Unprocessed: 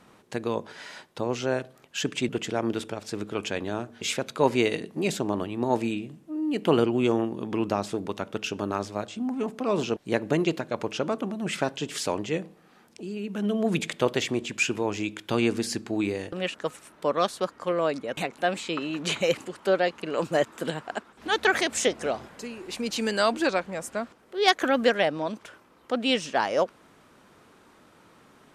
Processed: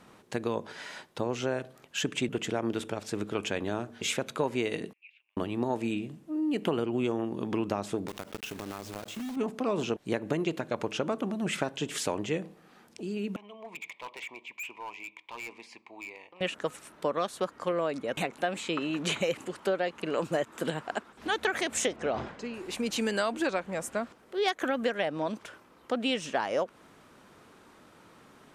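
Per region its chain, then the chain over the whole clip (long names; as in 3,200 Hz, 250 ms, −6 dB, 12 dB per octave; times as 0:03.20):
0:04.93–0:05.37: downward compressor 4 to 1, threshold −40 dBFS + flat-topped band-pass 2,500 Hz, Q 4.7 + high-frequency loss of the air 79 metres
0:08.08–0:09.37: one scale factor per block 3 bits + downward compressor, threshold −34 dBFS
0:13.36–0:16.41: pair of resonant band-passes 1,500 Hz, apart 1.2 octaves + gain into a clipping stage and back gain 35.5 dB
0:21.96–0:22.54: high-frequency loss of the air 120 metres + level that may fall only so fast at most 100 dB per second
whole clip: dynamic equaliser 4,800 Hz, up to −5 dB, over −50 dBFS, Q 2.4; downward compressor 6 to 1, threshold −25 dBFS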